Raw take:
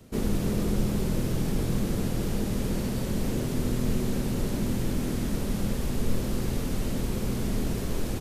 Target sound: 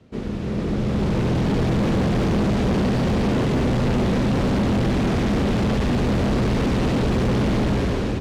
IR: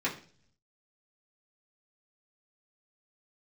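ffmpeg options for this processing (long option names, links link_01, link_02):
-filter_complex "[0:a]highpass=48,asplit=2[link_01][link_02];[1:a]atrim=start_sample=2205,adelay=92[link_03];[link_02][link_03]afir=irnorm=-1:irlink=0,volume=-14.5dB[link_04];[link_01][link_04]amix=inputs=2:normalize=0,dynaudnorm=framelen=390:gausssize=5:maxgain=16dB,lowpass=3700,asoftclip=type=hard:threshold=-17.5dB"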